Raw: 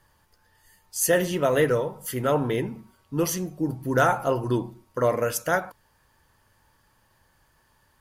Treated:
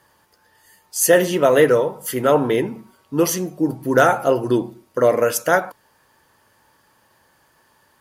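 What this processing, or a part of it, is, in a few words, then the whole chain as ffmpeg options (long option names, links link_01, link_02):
filter by subtraction: -filter_complex "[0:a]asettb=1/sr,asplit=3[link_01][link_02][link_03];[link_01]atrim=end=4.004[link_04];[link_02]atrim=start=4:end=5.16,asetpts=PTS-STARTPTS,afade=type=in:duration=0.004:curve=qsin,afade=type=out:start_time=1.156:duration=0.004:curve=qsin,equalizer=frequency=1000:width=3.2:gain=-6[link_05];[link_03]atrim=start=5.156[link_06];[link_04][link_05]acrossfade=duration=0.004:curve1=hsin:curve2=qsin[link_07];[link_07][link_06]acrossfade=duration=0.004:curve1=qsin:curve2=hsin,asplit=2[link_08][link_09];[link_09]lowpass=360,volume=-1[link_10];[link_08][link_10]amix=inputs=2:normalize=0,volume=6dB"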